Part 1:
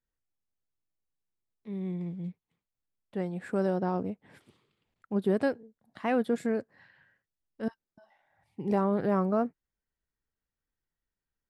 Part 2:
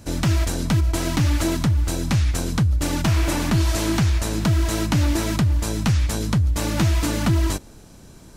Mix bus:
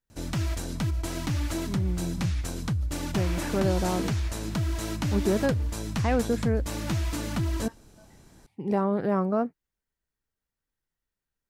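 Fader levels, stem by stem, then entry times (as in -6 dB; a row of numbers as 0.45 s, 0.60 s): +1.5 dB, -9.0 dB; 0.00 s, 0.10 s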